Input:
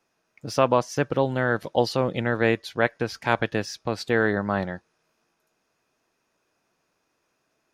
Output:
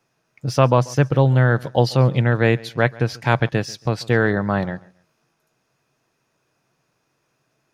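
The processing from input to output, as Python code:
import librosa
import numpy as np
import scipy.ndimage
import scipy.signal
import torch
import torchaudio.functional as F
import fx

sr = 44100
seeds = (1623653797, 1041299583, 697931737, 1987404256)

y = fx.peak_eq(x, sr, hz=130.0, db=13.0, octaves=0.53)
y = fx.echo_feedback(y, sr, ms=138, feedback_pct=28, wet_db=-22.5)
y = y * librosa.db_to_amplitude(3.0)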